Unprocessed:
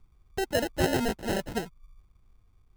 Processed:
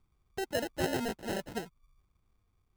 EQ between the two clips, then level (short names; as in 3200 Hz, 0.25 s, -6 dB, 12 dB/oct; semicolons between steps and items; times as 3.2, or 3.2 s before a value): low shelf 67 Hz -10.5 dB; -5.5 dB